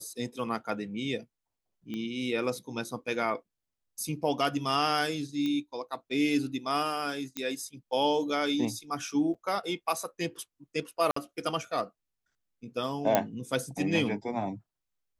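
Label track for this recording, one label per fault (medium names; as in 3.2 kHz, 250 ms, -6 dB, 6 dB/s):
1.940000	1.940000	pop -25 dBFS
5.460000	5.460000	pop -21 dBFS
7.370000	7.370000	pop -17 dBFS
9.340000	9.350000	dropout 6 ms
11.110000	11.160000	dropout 54 ms
13.150000	13.150000	pop -8 dBFS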